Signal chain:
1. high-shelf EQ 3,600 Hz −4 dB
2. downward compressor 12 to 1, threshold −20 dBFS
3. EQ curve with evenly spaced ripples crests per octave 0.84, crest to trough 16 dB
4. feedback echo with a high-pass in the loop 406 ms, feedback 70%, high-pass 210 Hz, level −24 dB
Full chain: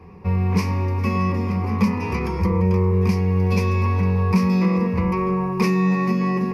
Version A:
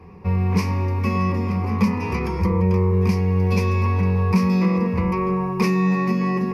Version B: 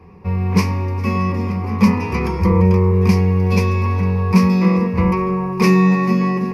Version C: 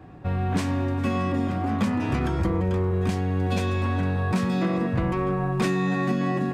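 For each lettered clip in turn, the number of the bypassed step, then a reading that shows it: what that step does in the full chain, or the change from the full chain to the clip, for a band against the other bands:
4, echo-to-direct ratio −21.5 dB to none audible
2, average gain reduction 3.0 dB
3, 4 kHz band +3.0 dB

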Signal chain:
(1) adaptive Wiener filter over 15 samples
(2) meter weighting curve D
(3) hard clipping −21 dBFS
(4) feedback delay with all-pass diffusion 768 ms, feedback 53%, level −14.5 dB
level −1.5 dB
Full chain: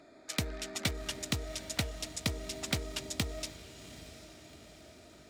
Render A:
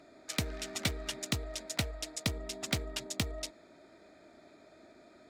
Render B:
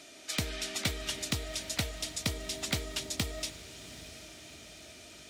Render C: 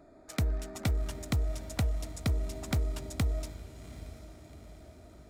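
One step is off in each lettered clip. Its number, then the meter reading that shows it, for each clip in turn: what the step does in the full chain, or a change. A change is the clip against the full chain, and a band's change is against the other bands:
4, echo-to-direct ratio −13.0 dB to none audible
1, 8 kHz band +2.5 dB
2, 125 Hz band +9.5 dB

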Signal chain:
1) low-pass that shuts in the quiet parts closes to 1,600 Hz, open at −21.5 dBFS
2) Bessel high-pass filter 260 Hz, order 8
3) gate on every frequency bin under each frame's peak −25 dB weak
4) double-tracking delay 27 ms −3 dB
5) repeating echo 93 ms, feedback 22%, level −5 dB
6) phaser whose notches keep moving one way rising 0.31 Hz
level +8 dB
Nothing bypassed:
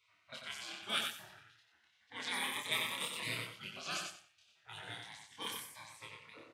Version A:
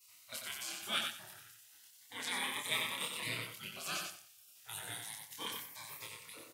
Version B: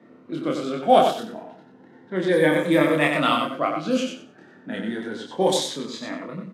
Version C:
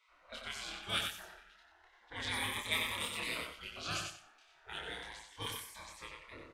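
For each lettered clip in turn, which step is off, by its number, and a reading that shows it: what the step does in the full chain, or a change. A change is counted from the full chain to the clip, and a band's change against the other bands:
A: 1, 8 kHz band +3.5 dB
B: 3, 4 kHz band −14.0 dB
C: 2, 125 Hz band +3.5 dB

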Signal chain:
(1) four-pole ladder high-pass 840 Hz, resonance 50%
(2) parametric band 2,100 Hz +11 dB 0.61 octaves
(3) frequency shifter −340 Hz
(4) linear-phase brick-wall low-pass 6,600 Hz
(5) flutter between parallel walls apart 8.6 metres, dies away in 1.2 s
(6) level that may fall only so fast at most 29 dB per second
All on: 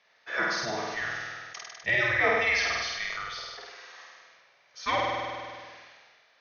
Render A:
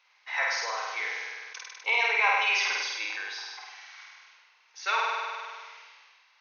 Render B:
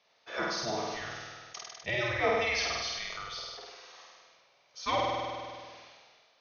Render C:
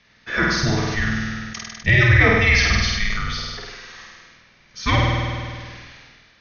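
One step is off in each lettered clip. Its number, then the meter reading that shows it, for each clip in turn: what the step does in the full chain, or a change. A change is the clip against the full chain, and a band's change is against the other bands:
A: 3, 500 Hz band −9.0 dB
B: 2, 2 kHz band −7.0 dB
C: 1, 125 Hz band +17.5 dB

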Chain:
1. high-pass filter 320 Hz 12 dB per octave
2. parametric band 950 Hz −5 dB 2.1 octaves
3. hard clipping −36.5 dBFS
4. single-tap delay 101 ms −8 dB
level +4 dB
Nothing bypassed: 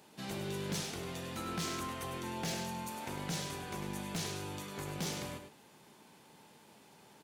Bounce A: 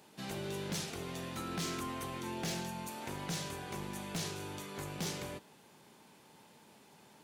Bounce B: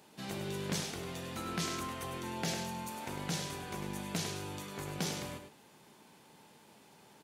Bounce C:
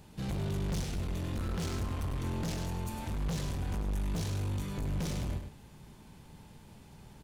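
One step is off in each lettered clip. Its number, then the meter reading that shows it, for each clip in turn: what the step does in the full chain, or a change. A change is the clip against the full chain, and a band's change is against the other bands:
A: 4, change in crest factor −2.5 dB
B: 3, distortion level −14 dB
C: 1, change in crest factor −6.5 dB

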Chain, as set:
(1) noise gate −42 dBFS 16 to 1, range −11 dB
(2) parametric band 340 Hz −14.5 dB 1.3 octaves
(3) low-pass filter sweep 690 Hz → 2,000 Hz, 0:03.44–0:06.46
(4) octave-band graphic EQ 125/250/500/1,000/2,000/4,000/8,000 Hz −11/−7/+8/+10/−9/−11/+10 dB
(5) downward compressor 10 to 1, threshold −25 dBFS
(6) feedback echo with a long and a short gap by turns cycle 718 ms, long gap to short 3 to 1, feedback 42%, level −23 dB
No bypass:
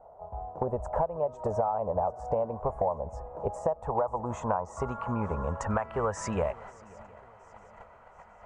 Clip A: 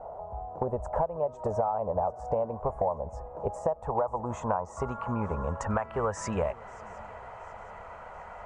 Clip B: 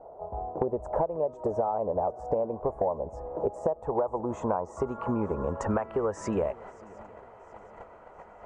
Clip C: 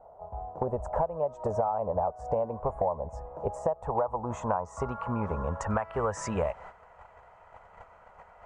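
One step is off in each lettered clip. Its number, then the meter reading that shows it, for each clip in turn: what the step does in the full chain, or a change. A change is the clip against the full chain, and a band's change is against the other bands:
1, change in momentary loudness spread +3 LU
2, 250 Hz band +5.5 dB
6, echo-to-direct ratio −20.5 dB to none audible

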